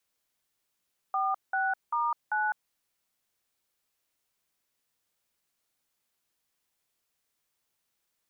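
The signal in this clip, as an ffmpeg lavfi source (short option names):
-f lavfi -i "aevalsrc='0.0398*clip(min(mod(t,0.392),0.205-mod(t,0.392))/0.002,0,1)*(eq(floor(t/0.392),0)*(sin(2*PI*770*mod(t,0.392))+sin(2*PI*1209*mod(t,0.392)))+eq(floor(t/0.392),1)*(sin(2*PI*770*mod(t,0.392))+sin(2*PI*1477*mod(t,0.392)))+eq(floor(t/0.392),2)*(sin(2*PI*941*mod(t,0.392))+sin(2*PI*1209*mod(t,0.392)))+eq(floor(t/0.392),3)*(sin(2*PI*852*mod(t,0.392))+sin(2*PI*1477*mod(t,0.392))))':d=1.568:s=44100"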